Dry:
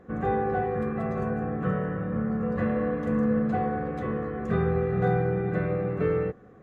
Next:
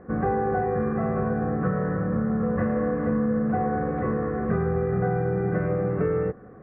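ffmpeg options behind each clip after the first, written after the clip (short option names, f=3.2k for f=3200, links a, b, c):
-af "lowpass=f=1.9k:w=0.5412,lowpass=f=1.9k:w=1.3066,acompressor=threshold=-26dB:ratio=6,volume=5.5dB"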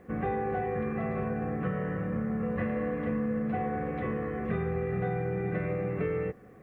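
-af "aexciter=amount=9.7:drive=4.1:freq=2.2k,volume=-6.5dB"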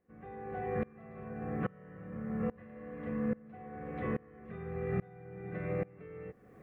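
-af "aeval=exprs='val(0)*pow(10,-26*if(lt(mod(-1.2*n/s,1),2*abs(-1.2)/1000),1-mod(-1.2*n/s,1)/(2*abs(-1.2)/1000),(mod(-1.2*n/s,1)-2*abs(-1.2)/1000)/(1-2*abs(-1.2)/1000))/20)':c=same"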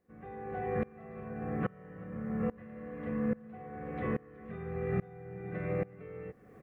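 -af "aecho=1:1:372:0.0668,volume=1.5dB"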